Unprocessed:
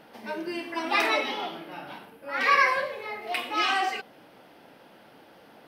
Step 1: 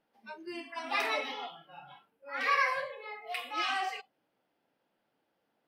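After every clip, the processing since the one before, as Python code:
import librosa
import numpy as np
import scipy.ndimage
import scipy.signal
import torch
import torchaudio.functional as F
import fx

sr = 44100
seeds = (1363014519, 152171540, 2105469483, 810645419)

y = fx.noise_reduce_blind(x, sr, reduce_db=19)
y = y * 10.0 ** (-7.0 / 20.0)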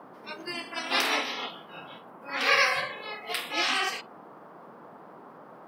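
y = fx.spec_clip(x, sr, under_db=18)
y = fx.dmg_noise_band(y, sr, seeds[0], low_hz=160.0, high_hz=1200.0, level_db=-54.0)
y = y * 10.0 ** (5.5 / 20.0)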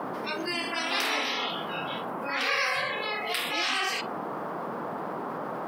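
y = fx.env_flatten(x, sr, amount_pct=70)
y = y * 10.0 ** (-6.0 / 20.0)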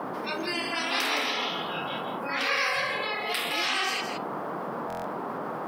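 y = x + 10.0 ** (-7.5 / 20.0) * np.pad(x, (int(165 * sr / 1000.0), 0))[:len(x)]
y = fx.buffer_glitch(y, sr, at_s=(4.88,), block=1024, repeats=6)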